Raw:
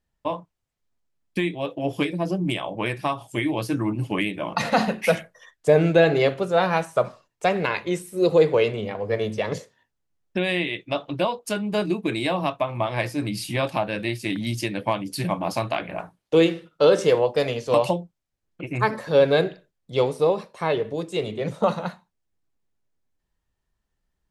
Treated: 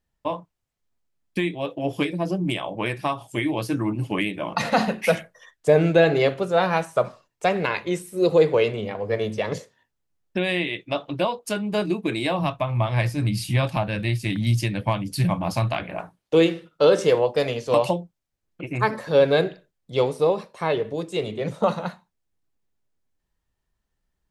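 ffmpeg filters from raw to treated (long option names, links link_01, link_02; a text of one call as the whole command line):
ffmpeg -i in.wav -filter_complex "[0:a]asplit=3[link_01][link_02][link_03];[link_01]afade=type=out:start_time=12.38:duration=0.02[link_04];[link_02]asubboost=boost=5:cutoff=140,afade=type=in:start_time=12.38:duration=0.02,afade=type=out:start_time=15.83:duration=0.02[link_05];[link_03]afade=type=in:start_time=15.83:duration=0.02[link_06];[link_04][link_05][link_06]amix=inputs=3:normalize=0" out.wav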